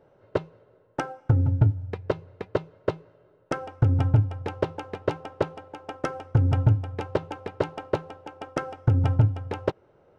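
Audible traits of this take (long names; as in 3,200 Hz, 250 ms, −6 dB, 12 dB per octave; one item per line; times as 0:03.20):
background noise floor −61 dBFS
spectral slope −8.0 dB per octave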